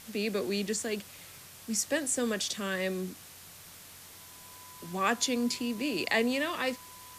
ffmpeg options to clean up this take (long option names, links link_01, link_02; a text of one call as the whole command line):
ffmpeg -i in.wav -af "adeclick=threshold=4,bandreject=frequency=90:width_type=h:width=4,bandreject=frequency=180:width_type=h:width=4,bandreject=frequency=270:width_type=h:width=4,bandreject=frequency=360:width_type=h:width=4,bandreject=frequency=1000:width=30,afftdn=noise_reduction=27:noise_floor=-50" out.wav